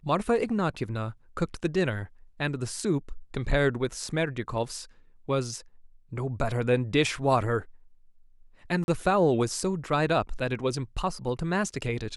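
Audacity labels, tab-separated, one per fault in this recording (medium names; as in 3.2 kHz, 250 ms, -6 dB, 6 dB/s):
8.840000	8.880000	dropout 41 ms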